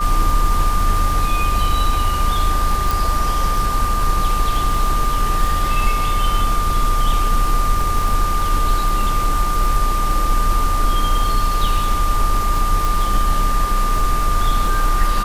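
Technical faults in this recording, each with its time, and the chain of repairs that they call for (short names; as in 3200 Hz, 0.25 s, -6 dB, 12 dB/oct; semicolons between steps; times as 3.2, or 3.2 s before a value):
crackle 52/s -23 dBFS
tone 1200 Hz -20 dBFS
2.91 pop
12.85 pop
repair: de-click; notch 1200 Hz, Q 30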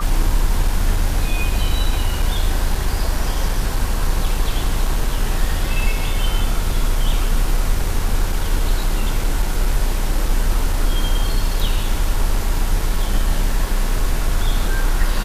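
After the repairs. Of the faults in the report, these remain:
none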